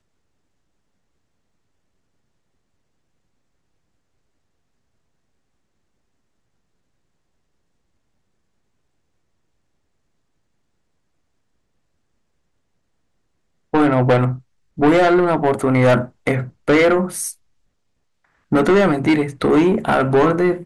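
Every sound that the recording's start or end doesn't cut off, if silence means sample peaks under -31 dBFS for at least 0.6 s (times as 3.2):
13.74–17.32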